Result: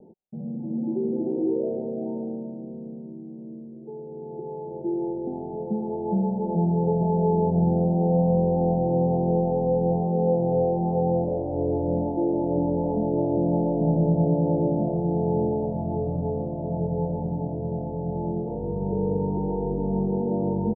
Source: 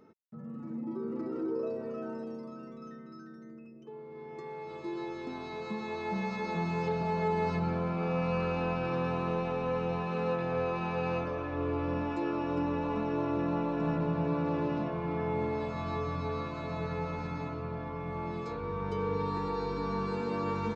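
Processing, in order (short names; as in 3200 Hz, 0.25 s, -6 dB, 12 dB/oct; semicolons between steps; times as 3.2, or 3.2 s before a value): steep low-pass 850 Hz 96 dB/oct; comb 5.4 ms, depth 36%; gain +9 dB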